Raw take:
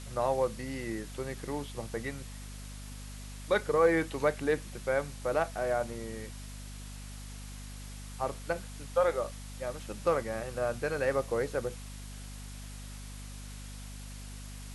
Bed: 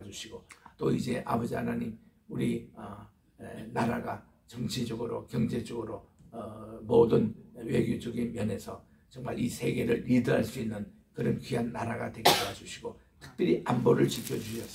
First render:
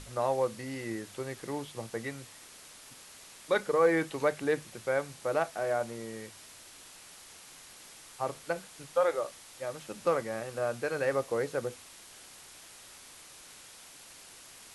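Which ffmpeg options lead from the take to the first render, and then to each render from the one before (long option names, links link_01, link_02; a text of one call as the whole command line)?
ffmpeg -i in.wav -af "bandreject=frequency=50:width_type=h:width=6,bandreject=frequency=100:width_type=h:width=6,bandreject=frequency=150:width_type=h:width=6,bandreject=frequency=200:width_type=h:width=6,bandreject=frequency=250:width_type=h:width=6" out.wav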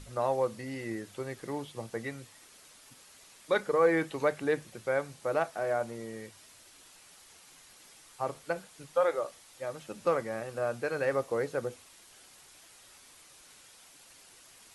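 ffmpeg -i in.wav -af "afftdn=noise_reduction=6:noise_floor=-52" out.wav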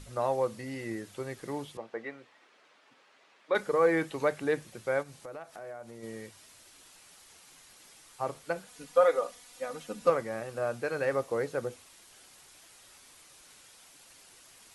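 ffmpeg -i in.wav -filter_complex "[0:a]asettb=1/sr,asplit=3[link_01][link_02][link_03];[link_01]atrim=end=1.774[link_04];[link_02]atrim=start=1.77:end=3.55,asetpts=PTS-STARTPTS,afade=type=in:duration=0.004:curve=qsin,afade=type=out:start_time=1.776:duration=0.004:curve=qsin,highpass=330,lowpass=2500[link_05];[link_03]atrim=start=3.546[link_06];[link_04][link_05]acrossfade=duration=0.004:curve1=hsin:curve2=qsin[link_07];[link_07][link_06]acrossfade=duration=0.004:curve1=qsin:curve2=hsin,asplit=3[link_08][link_09][link_10];[link_08]afade=type=out:start_time=5.02:duration=0.02[link_11];[link_09]acompressor=threshold=-44dB:ratio=3:attack=3.2:release=140:knee=1:detection=peak,afade=type=in:start_time=5.02:duration=0.02,afade=type=out:start_time=6.02:duration=0.02[link_12];[link_10]afade=type=in:start_time=6.02:duration=0.02[link_13];[link_11][link_12][link_13]amix=inputs=3:normalize=0,asettb=1/sr,asplit=3[link_14][link_15][link_16];[link_14]atrim=end=8.674[link_17];[link_15]atrim=start=8.67:end=10.1,asetpts=PTS-STARTPTS,afade=type=in:duration=0.004:curve=qsin,afade=type=out:start_time=1.426:duration=0.004:curve=qsin,aecho=1:1:4.1:0.87,atrim=end_sample=63063[link_18];[link_16]atrim=start=10.096[link_19];[link_17][link_18]acrossfade=duration=0.004:curve1=hsin:curve2=qsin[link_20];[link_20][link_19]acrossfade=duration=0.004:curve1=qsin:curve2=hsin" out.wav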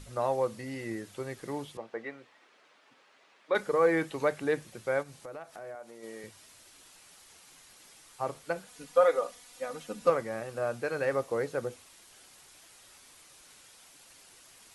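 ffmpeg -i in.wav -filter_complex "[0:a]asettb=1/sr,asplit=3[link_01][link_02][link_03];[link_01]atrim=end=5.754[link_04];[link_02]atrim=start=5.75:end=6.24,asetpts=PTS-STARTPTS,afade=type=in:duration=0.004:curve=qsin,afade=type=out:start_time=0.486:duration=0.004:curve=qsin,highpass=300[link_05];[link_03]atrim=start=6.236[link_06];[link_04][link_05]acrossfade=duration=0.004:curve1=hsin:curve2=qsin[link_07];[link_07][link_06]acrossfade=duration=0.004:curve1=qsin:curve2=hsin" out.wav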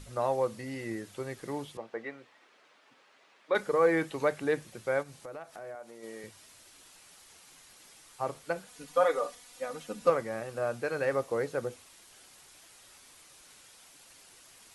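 ffmpeg -i in.wav -filter_complex "[0:a]asettb=1/sr,asplit=3[link_01][link_02][link_03];[link_01]atrim=end=8.874[link_04];[link_02]atrim=start=8.87:end=9.35,asetpts=PTS-STARTPTS,afade=type=in:duration=0.004:curve=qsin,afade=type=out:start_time=0.476:duration=0.004:curve=qsin,aecho=1:1:6.8:0.56,atrim=end_sample=21168[link_05];[link_03]atrim=start=9.346[link_06];[link_04][link_05]acrossfade=duration=0.004:curve1=hsin:curve2=qsin[link_07];[link_07][link_06]acrossfade=duration=0.004:curve1=qsin:curve2=hsin" out.wav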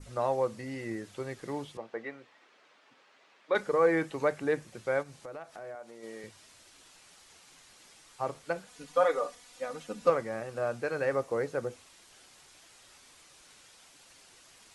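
ffmpeg -i in.wav -af "lowpass=8700,adynamicequalizer=threshold=0.00224:dfrequency=3600:dqfactor=1.5:tfrequency=3600:tqfactor=1.5:attack=5:release=100:ratio=0.375:range=2.5:mode=cutabove:tftype=bell" out.wav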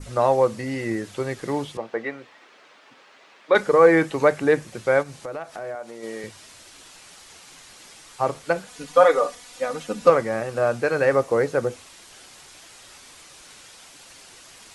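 ffmpeg -i in.wav -af "volume=10.5dB,alimiter=limit=-3dB:level=0:latency=1" out.wav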